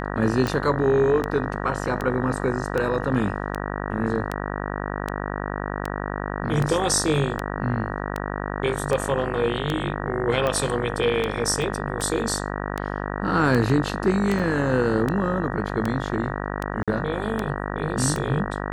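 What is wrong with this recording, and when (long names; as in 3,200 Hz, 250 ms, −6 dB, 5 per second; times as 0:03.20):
mains buzz 50 Hz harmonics 38 −29 dBFS
scratch tick 78 rpm −12 dBFS
0:11.62: drop-out 2.4 ms
0:14.39–0:14.40: drop-out 5.5 ms
0:16.83–0:16.88: drop-out 46 ms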